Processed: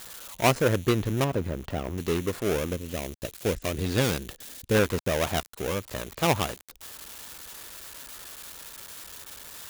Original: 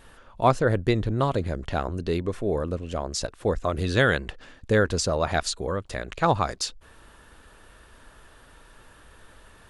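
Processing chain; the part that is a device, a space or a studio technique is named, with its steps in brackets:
budget class-D amplifier (gap after every zero crossing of 0.3 ms; spike at every zero crossing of −24 dBFS)
high-pass filter 90 Hz 6 dB per octave
0:01.24–0:01.98: de-essing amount 75%
0:02.73–0:04.75: parametric band 1,100 Hz −6 dB 1.7 octaves

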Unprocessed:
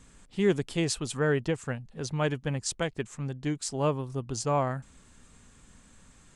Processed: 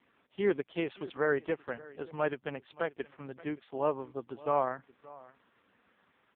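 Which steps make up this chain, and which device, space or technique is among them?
satellite phone (band-pass filter 360–3,000 Hz; single-tap delay 575 ms −20.5 dB; AMR narrowband 4.75 kbit/s 8,000 Hz)

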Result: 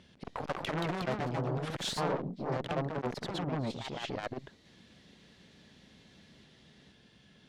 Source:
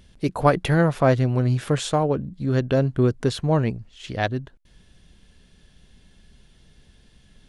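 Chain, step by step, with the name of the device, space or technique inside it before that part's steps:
valve radio (band-pass filter 140–5,100 Hz; tube saturation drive 25 dB, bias 0.4; saturating transformer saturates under 560 Hz)
delay with pitch and tempo change per echo 247 ms, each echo +2 semitones, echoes 2

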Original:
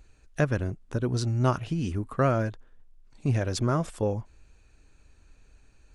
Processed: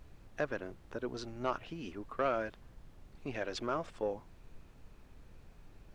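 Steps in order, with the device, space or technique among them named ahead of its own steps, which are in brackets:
aircraft cabin announcement (band-pass filter 360–3,900 Hz; soft clipping −15.5 dBFS, distortion −18 dB; brown noise bed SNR 12 dB)
0:02.25–0:03.74: dynamic equaliser 2,900 Hz, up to +4 dB, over −49 dBFS, Q 0.85
level −5 dB

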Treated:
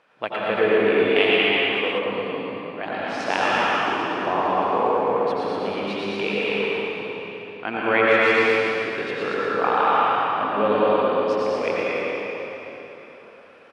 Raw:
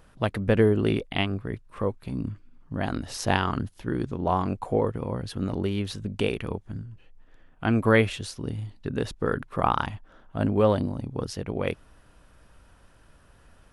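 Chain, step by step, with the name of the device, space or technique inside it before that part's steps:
station announcement (band-pass filter 450–3,600 Hz; parametric band 2,400 Hz +7.5 dB 0.27 octaves; loudspeakers that aren't time-aligned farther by 40 metres −5 dB, 65 metres −9 dB, 80 metres −5 dB; convolution reverb RT60 3.8 s, pre-delay 80 ms, DRR −6 dB)
0:01.16–0:01.99: high-shelf EQ 3,300 Hz +9.5 dB

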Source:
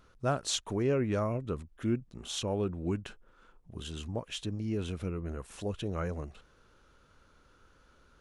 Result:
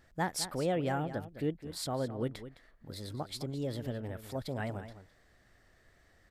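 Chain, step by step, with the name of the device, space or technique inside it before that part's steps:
slap from a distant wall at 47 metres, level −12 dB
nightcore (speed change +30%)
level −2.5 dB

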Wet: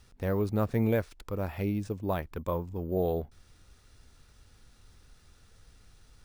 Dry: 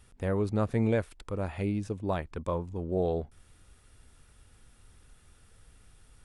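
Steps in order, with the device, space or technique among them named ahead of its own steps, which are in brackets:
crushed at another speed (tape speed factor 0.5×; decimation without filtering 6×; tape speed factor 2×)

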